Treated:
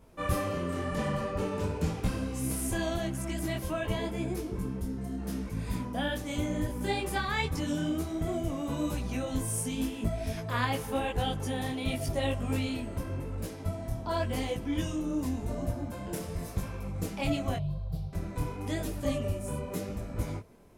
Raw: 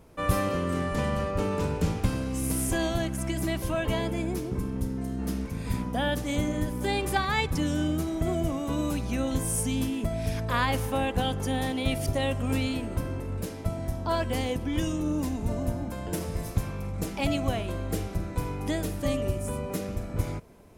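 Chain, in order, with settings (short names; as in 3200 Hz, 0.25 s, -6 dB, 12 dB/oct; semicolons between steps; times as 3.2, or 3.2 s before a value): 17.56–18.13 EQ curve 100 Hz 0 dB, 150 Hz +14 dB, 240 Hz -28 dB, 640 Hz -9 dB, 960 Hz -11 dB, 1800 Hz -27 dB, 4400 Hz -6 dB, 6900 Hz -24 dB, 15000 Hz -13 dB; detuned doubles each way 31 cents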